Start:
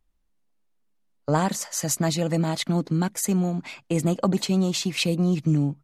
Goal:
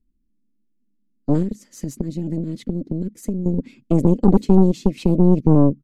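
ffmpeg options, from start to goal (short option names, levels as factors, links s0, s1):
-filter_complex "[0:a]firequalizer=gain_entry='entry(160,0);entry(230,13);entry(680,-28);entry(1900,-16)':delay=0.05:min_phase=1,asettb=1/sr,asplit=3[s0][s1][s2];[s0]atrim=end=1.424[s3];[s1]atrim=start=1.42:end=3.46,asetpts=PTS-STARTPTS,afade=t=in:d=0.004:c=qsin,afade=t=out:st=2.036:d=0.004:c=qsin,acompressor=threshold=0.0501:ratio=6[s4];[s2]atrim=start=3.456[s5];[s3][s4]acrossfade=d=0.004:c1=hsin:c2=qsin[s6];[s6][s5]acrossfade=d=0.004:c1=qsin:c2=hsin,aeval=exprs='0.708*(cos(1*acos(clip(val(0)/0.708,-1,1)))-cos(1*PI/2))+0.112*(cos(8*acos(clip(val(0)/0.708,-1,1)))-cos(8*PI/2))':c=same,volume=1.33"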